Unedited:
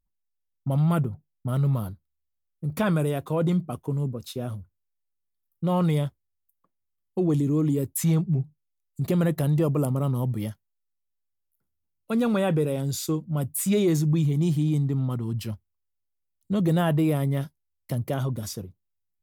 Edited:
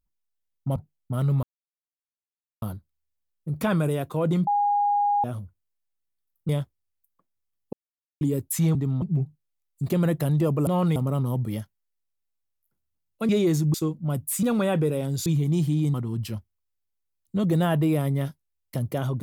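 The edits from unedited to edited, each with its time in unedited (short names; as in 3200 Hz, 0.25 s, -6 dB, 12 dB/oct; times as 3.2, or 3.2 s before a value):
0.76–1.11 cut
1.78 insert silence 1.19 s
3.63–4.4 bleep 819 Hz -19 dBFS
5.65–5.94 move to 9.85
7.18–7.66 mute
12.18–13.01 swap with 13.7–14.15
14.83–15.1 move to 8.2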